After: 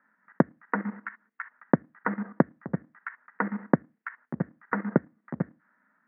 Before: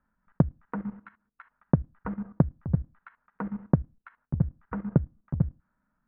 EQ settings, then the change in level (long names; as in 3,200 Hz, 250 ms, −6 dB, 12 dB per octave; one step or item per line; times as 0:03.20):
high-pass filter 220 Hz 24 dB per octave
low-pass with resonance 1,900 Hz, resonance Q 5.6
high-frequency loss of the air 170 metres
+6.0 dB